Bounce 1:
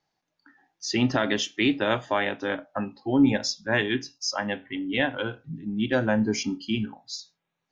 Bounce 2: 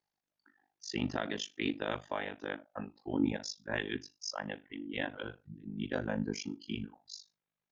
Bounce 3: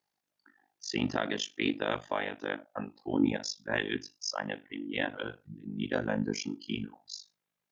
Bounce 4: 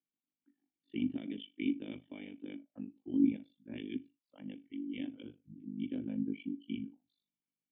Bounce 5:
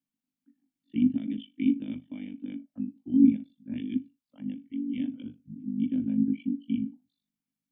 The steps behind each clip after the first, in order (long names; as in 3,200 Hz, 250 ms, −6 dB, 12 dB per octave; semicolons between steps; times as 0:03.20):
amplitude modulation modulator 50 Hz, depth 100%; level −7.5 dB
low-shelf EQ 77 Hz −10.5 dB; level +4.5 dB
formant resonators in series i; level +1 dB
low shelf with overshoot 310 Hz +6.5 dB, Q 3